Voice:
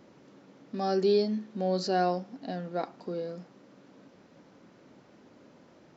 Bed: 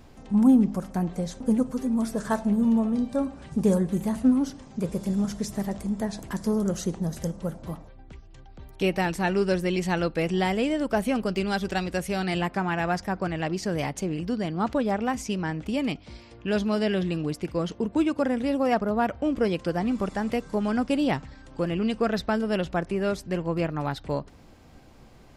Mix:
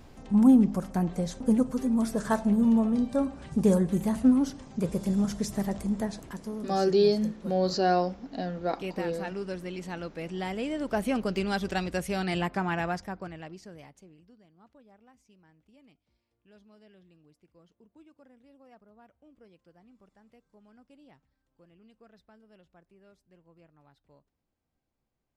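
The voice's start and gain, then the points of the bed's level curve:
5.90 s, +2.5 dB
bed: 5.96 s -0.5 dB
6.51 s -11.5 dB
10.19 s -11.5 dB
11.12 s -2.5 dB
12.76 s -2.5 dB
14.49 s -32.5 dB

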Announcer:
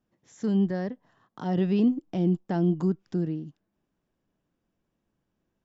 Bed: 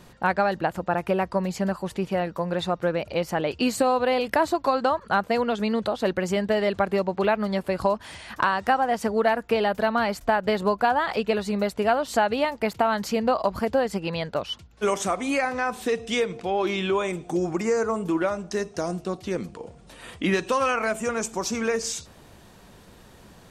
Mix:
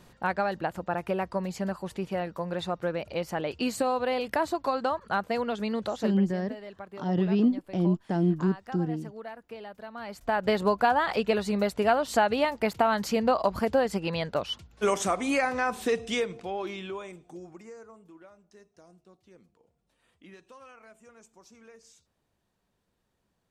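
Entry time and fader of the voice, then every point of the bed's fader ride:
5.60 s, -0.5 dB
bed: 6.01 s -5.5 dB
6.25 s -19.5 dB
9.91 s -19.5 dB
10.43 s -1.5 dB
15.97 s -1.5 dB
18.13 s -27.5 dB

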